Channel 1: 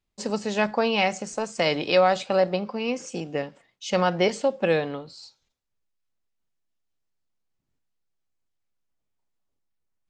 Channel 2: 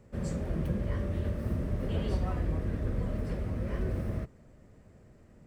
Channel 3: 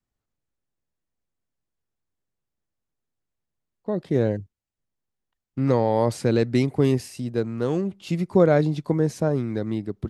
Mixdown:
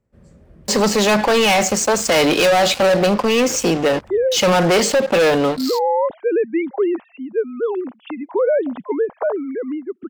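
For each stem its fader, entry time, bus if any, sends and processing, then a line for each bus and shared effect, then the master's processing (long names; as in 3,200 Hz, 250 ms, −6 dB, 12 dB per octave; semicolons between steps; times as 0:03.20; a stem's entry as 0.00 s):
+2.5 dB, 0.50 s, no send, Bessel high-pass filter 220 Hz, order 6; leveller curve on the samples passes 5
−14.5 dB, 0.00 s, no send, no processing
−3.0 dB, 0.00 s, no send, three sine waves on the formant tracks; parametric band 860 Hz +12.5 dB 1.9 octaves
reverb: not used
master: brickwall limiter −11 dBFS, peak gain reduction 10 dB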